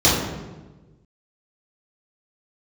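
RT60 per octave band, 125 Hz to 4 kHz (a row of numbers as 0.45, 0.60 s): 1.7, 1.5, 1.4, 1.1, 0.95, 0.80 s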